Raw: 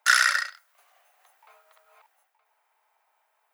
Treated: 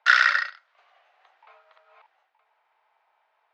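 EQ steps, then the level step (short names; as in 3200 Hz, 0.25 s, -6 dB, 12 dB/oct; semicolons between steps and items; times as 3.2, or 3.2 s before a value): LPF 4100 Hz 24 dB/oct; +2.5 dB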